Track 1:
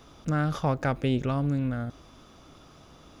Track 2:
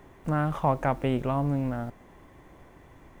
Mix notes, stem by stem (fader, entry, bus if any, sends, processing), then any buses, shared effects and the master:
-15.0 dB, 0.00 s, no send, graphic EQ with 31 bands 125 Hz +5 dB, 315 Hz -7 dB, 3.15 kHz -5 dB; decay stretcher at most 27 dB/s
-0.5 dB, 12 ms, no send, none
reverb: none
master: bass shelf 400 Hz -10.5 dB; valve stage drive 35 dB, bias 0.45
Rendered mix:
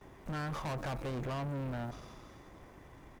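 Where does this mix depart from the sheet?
stem 2: polarity flipped; master: missing bass shelf 400 Hz -10.5 dB

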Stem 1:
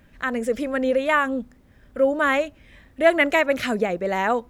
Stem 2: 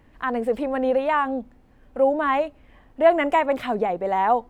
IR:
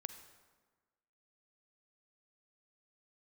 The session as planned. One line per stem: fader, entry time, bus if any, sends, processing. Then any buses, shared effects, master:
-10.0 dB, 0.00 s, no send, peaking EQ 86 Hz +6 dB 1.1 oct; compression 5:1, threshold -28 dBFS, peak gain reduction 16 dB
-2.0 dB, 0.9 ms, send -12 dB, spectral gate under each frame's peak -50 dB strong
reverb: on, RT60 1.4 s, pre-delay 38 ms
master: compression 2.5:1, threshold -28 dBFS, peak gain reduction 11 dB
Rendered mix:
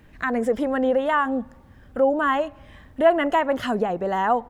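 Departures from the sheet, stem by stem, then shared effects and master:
stem 1 -10.0 dB -> -0.5 dB; master: missing compression 2.5:1, threshold -28 dBFS, peak gain reduction 11 dB

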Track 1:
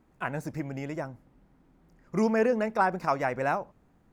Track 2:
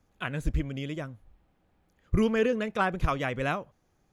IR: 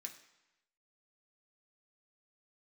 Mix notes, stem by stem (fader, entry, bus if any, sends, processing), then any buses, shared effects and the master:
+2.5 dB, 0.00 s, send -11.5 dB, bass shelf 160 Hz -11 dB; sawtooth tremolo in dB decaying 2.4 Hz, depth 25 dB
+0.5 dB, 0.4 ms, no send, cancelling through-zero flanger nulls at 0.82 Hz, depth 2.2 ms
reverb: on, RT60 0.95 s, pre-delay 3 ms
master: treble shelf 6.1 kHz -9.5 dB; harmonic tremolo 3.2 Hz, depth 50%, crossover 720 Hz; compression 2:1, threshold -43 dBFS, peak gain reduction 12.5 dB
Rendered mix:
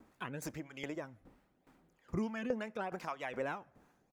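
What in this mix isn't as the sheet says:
stem 1 +2.5 dB -> +8.5 dB; master: missing treble shelf 6.1 kHz -9.5 dB

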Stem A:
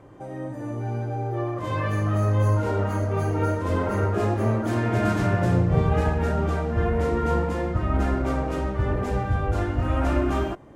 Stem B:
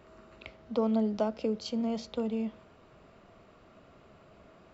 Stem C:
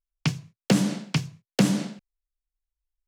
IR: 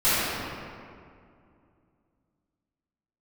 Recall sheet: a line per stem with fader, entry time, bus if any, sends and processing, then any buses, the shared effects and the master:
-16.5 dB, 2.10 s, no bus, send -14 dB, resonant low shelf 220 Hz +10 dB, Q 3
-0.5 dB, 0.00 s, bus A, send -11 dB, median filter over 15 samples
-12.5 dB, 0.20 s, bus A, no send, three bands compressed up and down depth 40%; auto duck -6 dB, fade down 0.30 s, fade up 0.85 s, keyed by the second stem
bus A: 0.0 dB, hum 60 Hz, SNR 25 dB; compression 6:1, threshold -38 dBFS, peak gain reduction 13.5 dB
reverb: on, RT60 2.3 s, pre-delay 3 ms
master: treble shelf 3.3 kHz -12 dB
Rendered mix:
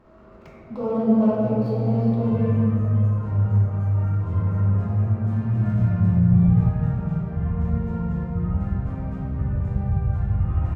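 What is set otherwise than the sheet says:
stem A: entry 2.10 s -> 0.60 s; stem C -12.5 dB -> -19.0 dB

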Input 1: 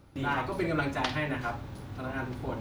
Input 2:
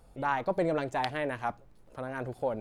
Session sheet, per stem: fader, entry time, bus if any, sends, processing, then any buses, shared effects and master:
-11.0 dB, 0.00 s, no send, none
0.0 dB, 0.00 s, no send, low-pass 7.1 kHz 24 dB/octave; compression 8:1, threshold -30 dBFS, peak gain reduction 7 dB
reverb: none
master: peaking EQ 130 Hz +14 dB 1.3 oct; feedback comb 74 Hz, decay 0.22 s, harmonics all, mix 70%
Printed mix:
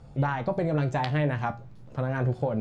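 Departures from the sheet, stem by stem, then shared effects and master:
stem 1 -11.0 dB -> -18.0 dB; stem 2 0.0 dB -> +9.5 dB

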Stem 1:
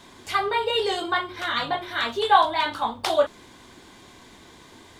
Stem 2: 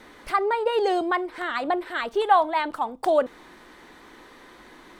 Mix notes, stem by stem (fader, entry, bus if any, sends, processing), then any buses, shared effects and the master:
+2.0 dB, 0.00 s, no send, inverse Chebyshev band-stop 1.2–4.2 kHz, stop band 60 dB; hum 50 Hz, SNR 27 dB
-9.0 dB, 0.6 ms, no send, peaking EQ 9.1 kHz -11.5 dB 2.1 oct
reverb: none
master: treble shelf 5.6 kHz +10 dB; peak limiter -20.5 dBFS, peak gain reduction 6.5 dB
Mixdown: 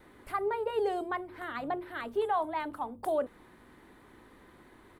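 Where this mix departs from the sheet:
stem 1 +2.0 dB -> -9.0 dB; master: missing treble shelf 5.6 kHz +10 dB

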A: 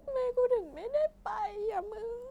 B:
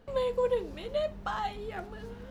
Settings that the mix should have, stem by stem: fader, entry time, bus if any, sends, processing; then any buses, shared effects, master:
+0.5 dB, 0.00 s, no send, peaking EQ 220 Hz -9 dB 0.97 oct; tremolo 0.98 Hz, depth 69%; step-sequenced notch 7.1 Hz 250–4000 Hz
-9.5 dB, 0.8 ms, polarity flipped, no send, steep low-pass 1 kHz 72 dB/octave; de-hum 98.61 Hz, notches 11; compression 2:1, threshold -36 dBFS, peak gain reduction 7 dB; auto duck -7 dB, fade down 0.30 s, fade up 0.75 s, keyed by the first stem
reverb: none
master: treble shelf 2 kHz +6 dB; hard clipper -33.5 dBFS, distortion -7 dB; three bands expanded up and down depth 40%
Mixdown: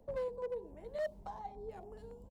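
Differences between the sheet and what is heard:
stem A +0.5 dB -> -9.0 dB; stem B -9.5 dB -> 0.0 dB

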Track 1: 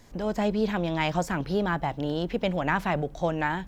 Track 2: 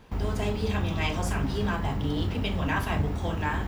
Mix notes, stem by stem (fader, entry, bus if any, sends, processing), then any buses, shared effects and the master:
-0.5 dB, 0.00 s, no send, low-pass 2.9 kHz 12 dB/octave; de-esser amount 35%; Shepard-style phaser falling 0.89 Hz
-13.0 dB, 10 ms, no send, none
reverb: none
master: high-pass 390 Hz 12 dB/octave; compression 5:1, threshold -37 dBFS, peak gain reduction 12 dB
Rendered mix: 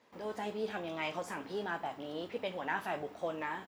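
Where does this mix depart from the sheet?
stem 1 -0.5 dB -> -6.5 dB; master: missing compression 5:1, threshold -37 dBFS, peak gain reduction 12 dB

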